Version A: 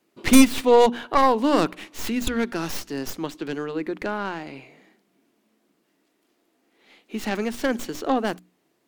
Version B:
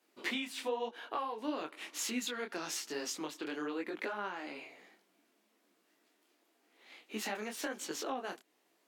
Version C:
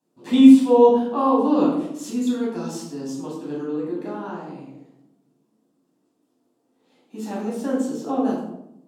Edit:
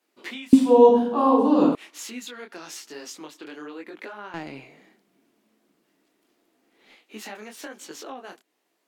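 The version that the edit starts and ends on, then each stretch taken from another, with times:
B
0.53–1.75 from C
4.34–6.95 from A

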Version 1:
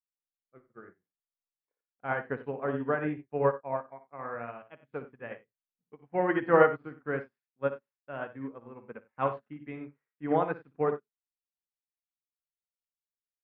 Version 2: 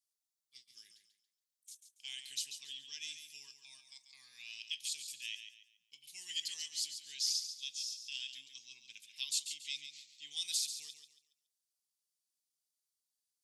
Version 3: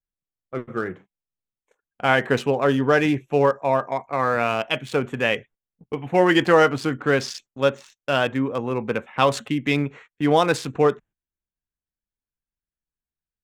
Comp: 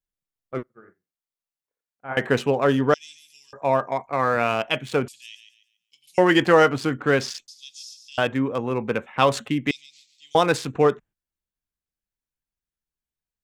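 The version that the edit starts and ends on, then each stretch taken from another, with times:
3
0.63–2.17 from 1
2.94–3.53 from 2
5.08–6.18 from 2
7.48–8.18 from 2
9.71–10.35 from 2

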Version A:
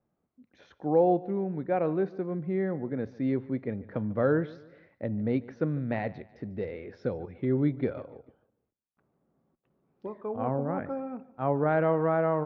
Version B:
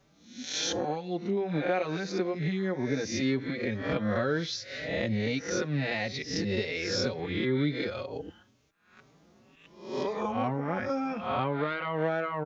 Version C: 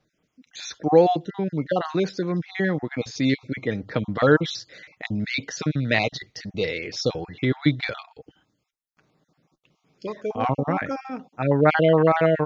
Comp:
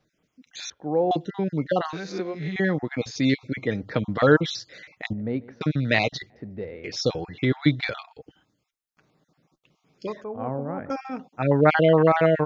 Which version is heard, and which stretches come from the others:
C
0.7–1.11 from A
1.93–2.56 from B
5.13–5.61 from A
6.3–6.84 from A
10.24–10.9 from A

